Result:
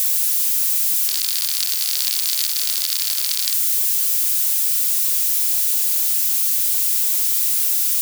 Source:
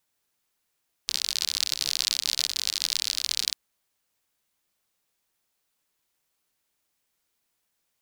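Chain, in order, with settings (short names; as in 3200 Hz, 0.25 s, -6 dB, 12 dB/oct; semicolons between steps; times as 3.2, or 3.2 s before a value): switching spikes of -16.5 dBFS; tilt shelf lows -4 dB, about 1100 Hz; gain -2.5 dB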